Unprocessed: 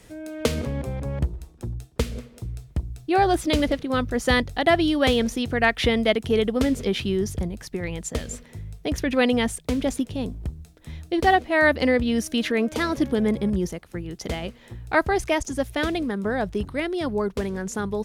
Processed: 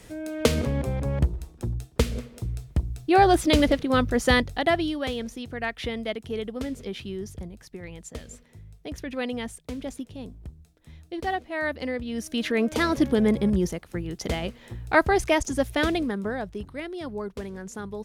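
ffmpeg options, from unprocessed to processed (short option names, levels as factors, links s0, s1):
-af "volume=4.47,afade=t=out:st=4.07:d=0.99:silence=0.251189,afade=t=in:st=12.08:d=0.71:silence=0.281838,afade=t=out:st=15.9:d=0.57:silence=0.354813"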